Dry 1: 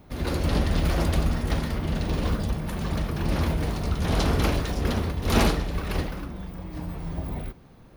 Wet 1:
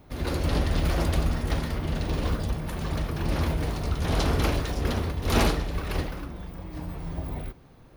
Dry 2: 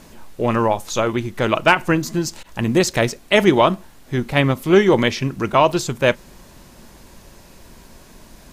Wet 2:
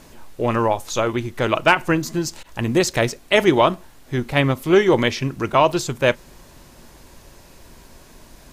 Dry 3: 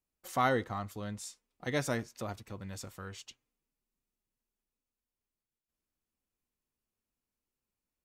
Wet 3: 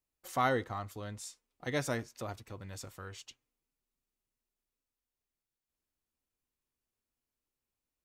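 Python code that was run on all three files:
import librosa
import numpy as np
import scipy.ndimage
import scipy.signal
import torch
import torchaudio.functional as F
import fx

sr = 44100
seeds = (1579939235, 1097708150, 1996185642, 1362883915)

y = fx.peak_eq(x, sr, hz=200.0, db=-7.0, octaves=0.25)
y = y * 10.0 ** (-1.0 / 20.0)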